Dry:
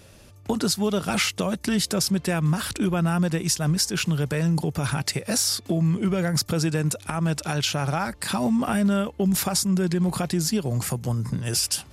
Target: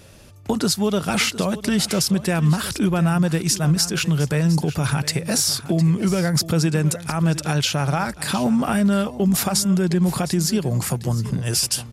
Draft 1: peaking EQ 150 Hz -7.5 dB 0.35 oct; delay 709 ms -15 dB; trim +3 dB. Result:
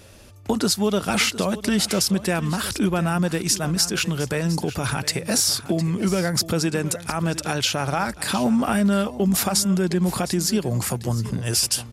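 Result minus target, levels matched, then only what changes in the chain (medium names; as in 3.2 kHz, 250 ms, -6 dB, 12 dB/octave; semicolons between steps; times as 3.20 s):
125 Hz band -3.5 dB
change: peaking EQ 150 Hz +2 dB 0.35 oct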